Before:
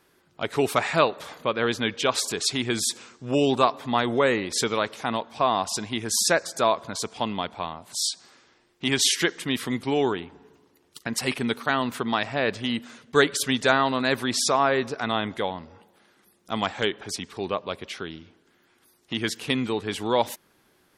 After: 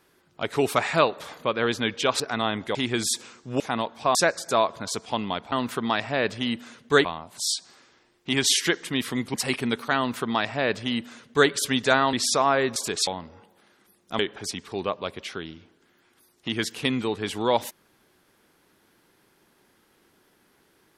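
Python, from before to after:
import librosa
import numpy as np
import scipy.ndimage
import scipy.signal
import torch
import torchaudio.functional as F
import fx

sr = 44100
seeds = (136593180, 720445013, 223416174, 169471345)

y = fx.edit(x, sr, fx.swap(start_s=2.2, length_s=0.31, other_s=14.9, other_length_s=0.55),
    fx.cut(start_s=3.36, length_s=1.59),
    fx.cut(start_s=5.5, length_s=0.73),
    fx.cut(start_s=9.89, length_s=1.23),
    fx.duplicate(start_s=11.75, length_s=1.53, to_s=7.6),
    fx.cut(start_s=13.91, length_s=0.36),
    fx.cut(start_s=16.57, length_s=0.27), tone=tone)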